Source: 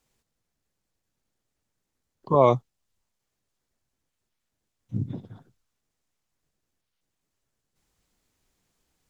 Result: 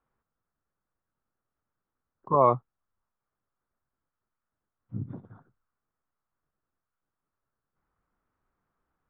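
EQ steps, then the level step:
low-pass with resonance 1,300 Hz, resonance Q 3.1
−6.0 dB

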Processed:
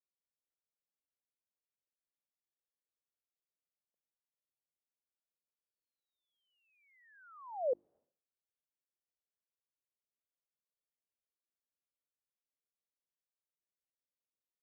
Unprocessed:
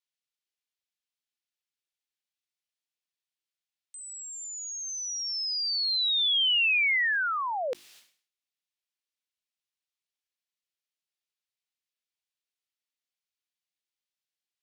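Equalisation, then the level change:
transistor ladder low-pass 650 Hz, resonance 50%
high-frequency loss of the air 480 metres
+3.0 dB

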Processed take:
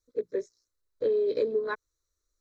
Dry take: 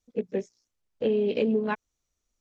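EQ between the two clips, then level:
parametric band 4,000 Hz +12 dB 0.22 octaves
phaser with its sweep stopped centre 760 Hz, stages 6
0.0 dB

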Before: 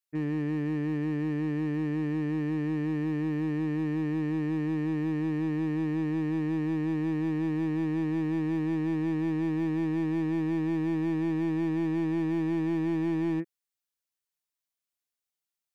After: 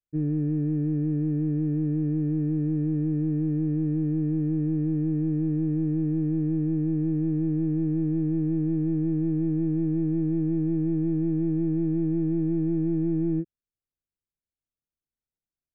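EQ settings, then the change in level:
moving average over 44 samples
high-frequency loss of the air 83 metres
low-shelf EQ 140 Hz +11.5 dB
+2.0 dB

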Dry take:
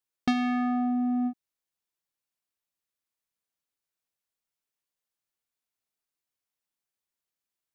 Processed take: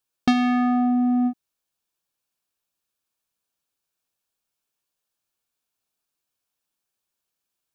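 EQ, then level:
notch filter 2,000 Hz, Q 6.5
+6.5 dB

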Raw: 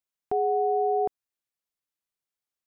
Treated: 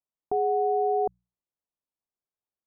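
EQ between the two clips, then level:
low-pass filter 1,100 Hz 24 dB per octave
mains-hum notches 60/120/180 Hz
0.0 dB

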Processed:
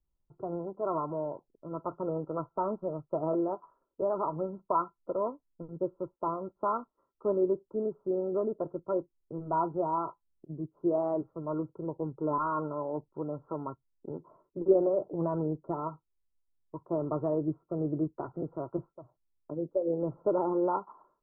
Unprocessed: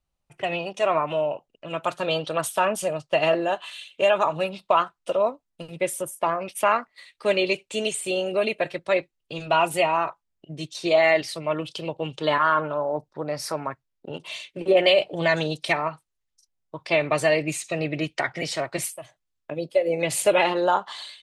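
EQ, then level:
Chebyshev low-pass with heavy ripple 1,400 Hz, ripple 9 dB
spectral tilt −3 dB per octave
−5.0 dB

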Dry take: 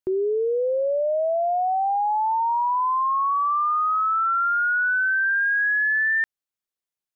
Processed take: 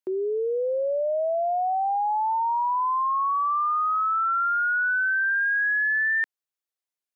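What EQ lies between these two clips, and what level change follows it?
high-pass filter 330 Hz
−2.0 dB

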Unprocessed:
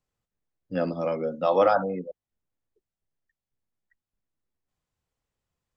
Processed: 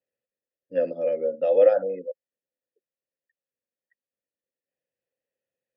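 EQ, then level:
octave-band graphic EQ 125/250/1,000 Hz +5/+7/+5 dB
dynamic equaliser 950 Hz, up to −5 dB, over −35 dBFS, Q 3.3
formant filter e
+5.5 dB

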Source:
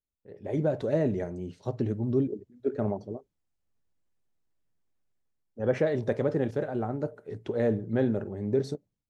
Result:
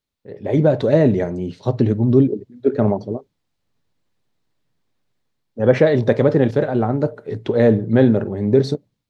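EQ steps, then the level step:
graphic EQ with 10 bands 125 Hz +8 dB, 250 Hz +6 dB, 500 Hz +5 dB, 1,000 Hz +6 dB, 2,000 Hz +5 dB, 4,000 Hz +10 dB
+4.5 dB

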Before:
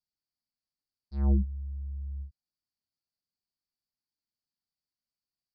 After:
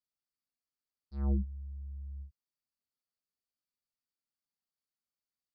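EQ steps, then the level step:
thirty-one-band graphic EQ 250 Hz +4 dB, 500 Hz +4 dB, 1,250 Hz +7 dB
−6.0 dB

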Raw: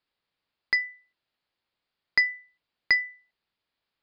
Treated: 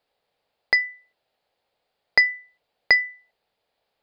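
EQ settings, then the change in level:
flat-topped bell 600 Hz +10.5 dB 1.2 octaves
+5.0 dB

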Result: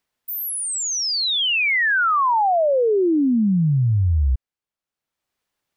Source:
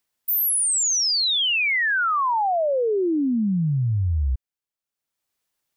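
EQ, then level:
high-shelf EQ 5,000 Hz −10.5 dB
+4.0 dB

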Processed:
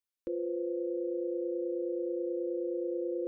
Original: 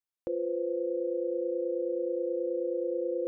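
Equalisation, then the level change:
phaser with its sweep stopped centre 310 Hz, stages 4
0.0 dB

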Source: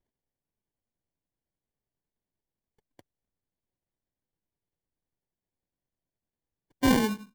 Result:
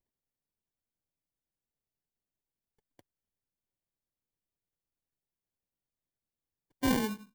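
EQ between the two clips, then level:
high-shelf EQ 11,000 Hz +6 dB
−6.0 dB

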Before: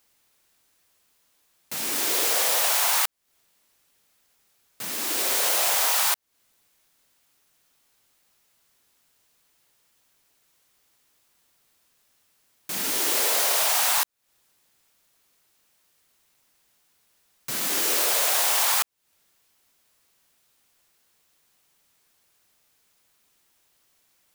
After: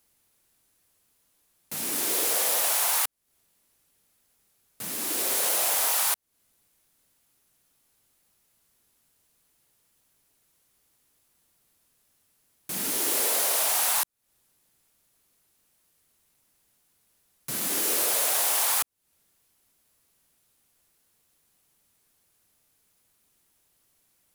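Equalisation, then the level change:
low-shelf EQ 420 Hz +8.5 dB
parametric band 11,000 Hz +7.5 dB 0.77 octaves
−5.5 dB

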